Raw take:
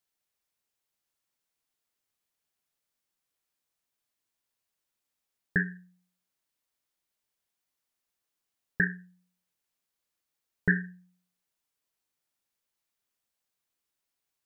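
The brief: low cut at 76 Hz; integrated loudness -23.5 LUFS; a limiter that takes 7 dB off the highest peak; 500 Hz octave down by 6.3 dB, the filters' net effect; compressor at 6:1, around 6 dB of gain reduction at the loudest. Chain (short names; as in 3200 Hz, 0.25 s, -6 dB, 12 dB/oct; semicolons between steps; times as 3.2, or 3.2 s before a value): HPF 76 Hz; bell 500 Hz -8.5 dB; compressor 6:1, threshold -28 dBFS; gain +17.5 dB; limiter -5 dBFS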